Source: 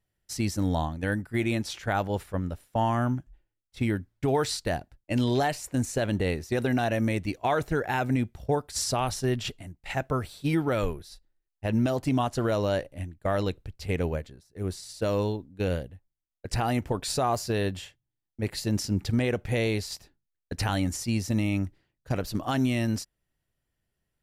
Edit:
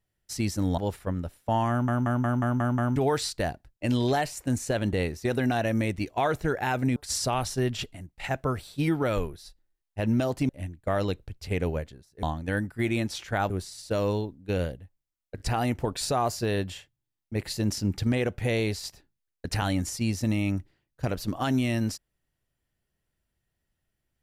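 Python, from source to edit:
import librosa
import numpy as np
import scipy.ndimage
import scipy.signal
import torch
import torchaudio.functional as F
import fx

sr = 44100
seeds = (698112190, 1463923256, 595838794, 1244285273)

y = fx.edit(x, sr, fx.move(start_s=0.78, length_s=1.27, to_s=14.61),
    fx.stutter_over(start_s=2.97, slice_s=0.18, count=7),
    fx.cut(start_s=8.23, length_s=0.39),
    fx.cut(start_s=12.15, length_s=0.72),
    fx.stutter(start_s=16.47, slice_s=0.02, count=3), tone=tone)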